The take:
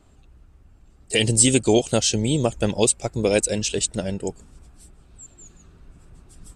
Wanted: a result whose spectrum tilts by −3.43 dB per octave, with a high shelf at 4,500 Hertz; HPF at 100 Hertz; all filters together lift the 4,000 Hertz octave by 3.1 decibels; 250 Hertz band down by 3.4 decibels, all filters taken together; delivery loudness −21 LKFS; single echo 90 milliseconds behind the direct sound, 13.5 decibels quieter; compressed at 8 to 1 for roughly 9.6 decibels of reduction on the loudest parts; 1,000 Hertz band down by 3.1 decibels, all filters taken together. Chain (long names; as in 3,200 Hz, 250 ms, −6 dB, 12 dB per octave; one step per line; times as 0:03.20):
high-pass filter 100 Hz
parametric band 250 Hz −4 dB
parametric band 1,000 Hz −4.5 dB
parametric band 4,000 Hz +8 dB
high-shelf EQ 4,500 Hz −6.5 dB
downward compressor 8 to 1, threshold −24 dBFS
single-tap delay 90 ms −13.5 dB
level +8 dB